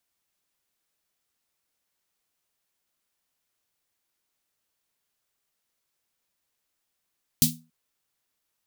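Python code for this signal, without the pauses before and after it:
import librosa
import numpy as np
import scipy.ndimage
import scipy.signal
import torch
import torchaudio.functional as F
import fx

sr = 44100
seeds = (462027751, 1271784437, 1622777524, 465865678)

y = fx.drum_snare(sr, seeds[0], length_s=0.28, hz=160.0, second_hz=240.0, noise_db=5.5, noise_from_hz=3500.0, decay_s=0.33, noise_decay_s=0.21)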